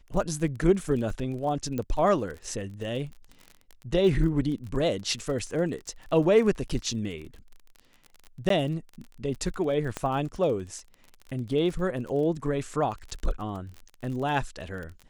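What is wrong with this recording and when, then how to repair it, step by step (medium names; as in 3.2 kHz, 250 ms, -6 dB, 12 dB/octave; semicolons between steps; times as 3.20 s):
crackle 34 per s -35 dBFS
1.78 s: pop -19 dBFS
8.49–8.50 s: dropout 13 ms
9.97 s: pop -15 dBFS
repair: de-click; interpolate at 8.49 s, 13 ms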